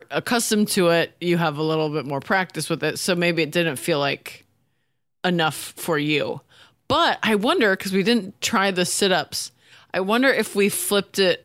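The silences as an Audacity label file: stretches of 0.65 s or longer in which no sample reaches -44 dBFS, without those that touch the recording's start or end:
4.430000	5.240000	silence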